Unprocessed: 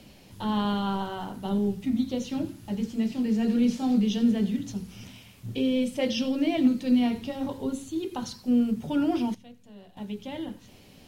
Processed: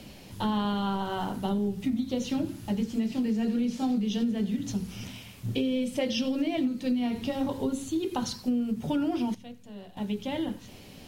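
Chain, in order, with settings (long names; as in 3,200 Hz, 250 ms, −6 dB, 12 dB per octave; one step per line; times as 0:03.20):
downward compressor 10 to 1, threshold −29 dBFS, peak gain reduction 13.5 dB
level +4.5 dB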